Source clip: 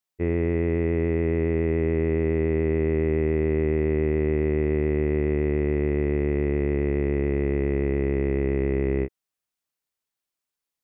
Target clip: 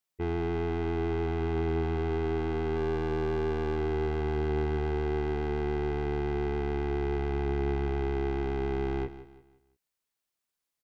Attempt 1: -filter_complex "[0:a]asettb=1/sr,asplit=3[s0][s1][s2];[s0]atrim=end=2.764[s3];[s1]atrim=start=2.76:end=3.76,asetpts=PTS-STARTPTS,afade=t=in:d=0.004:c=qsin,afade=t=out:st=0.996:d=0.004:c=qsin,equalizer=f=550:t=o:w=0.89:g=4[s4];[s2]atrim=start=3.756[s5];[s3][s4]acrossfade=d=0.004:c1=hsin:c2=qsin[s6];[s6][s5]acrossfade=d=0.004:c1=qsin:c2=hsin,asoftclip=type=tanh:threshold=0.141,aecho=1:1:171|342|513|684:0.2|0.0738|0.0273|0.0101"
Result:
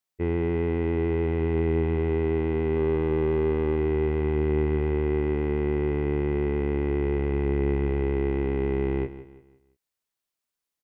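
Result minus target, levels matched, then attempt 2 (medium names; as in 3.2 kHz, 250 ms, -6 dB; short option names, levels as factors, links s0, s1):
saturation: distortion -9 dB
-filter_complex "[0:a]asettb=1/sr,asplit=3[s0][s1][s2];[s0]atrim=end=2.764[s3];[s1]atrim=start=2.76:end=3.76,asetpts=PTS-STARTPTS,afade=t=in:d=0.004:c=qsin,afade=t=out:st=0.996:d=0.004:c=qsin,equalizer=f=550:t=o:w=0.89:g=4[s4];[s2]atrim=start=3.756[s5];[s3][s4]acrossfade=d=0.004:c1=hsin:c2=qsin[s6];[s6][s5]acrossfade=d=0.004:c1=qsin:c2=hsin,asoftclip=type=tanh:threshold=0.0422,aecho=1:1:171|342|513|684:0.2|0.0738|0.0273|0.0101"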